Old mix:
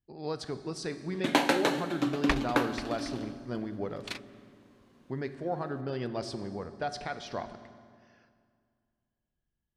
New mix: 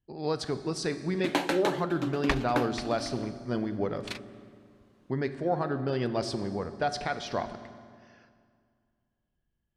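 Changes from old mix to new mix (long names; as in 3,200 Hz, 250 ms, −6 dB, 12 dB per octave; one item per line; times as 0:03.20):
speech +5.0 dB
first sound: send off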